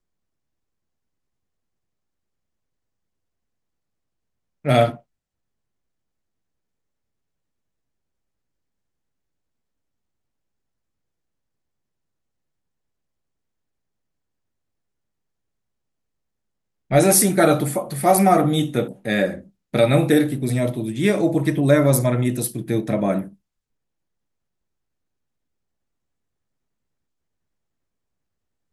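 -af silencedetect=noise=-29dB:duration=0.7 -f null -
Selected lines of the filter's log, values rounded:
silence_start: 0.00
silence_end: 4.65 | silence_duration: 4.65
silence_start: 4.95
silence_end: 16.91 | silence_duration: 11.96
silence_start: 23.27
silence_end: 28.73 | silence_duration: 5.46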